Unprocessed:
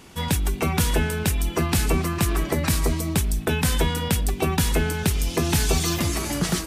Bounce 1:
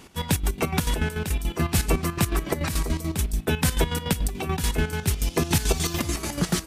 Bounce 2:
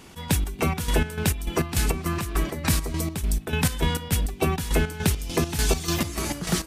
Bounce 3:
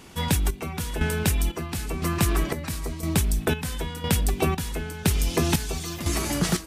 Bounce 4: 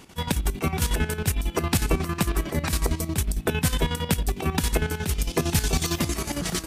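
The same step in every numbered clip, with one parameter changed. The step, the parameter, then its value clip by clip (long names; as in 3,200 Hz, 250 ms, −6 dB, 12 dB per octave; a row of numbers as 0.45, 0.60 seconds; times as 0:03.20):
square-wave tremolo, speed: 6.9, 3.4, 0.99, 11 Hertz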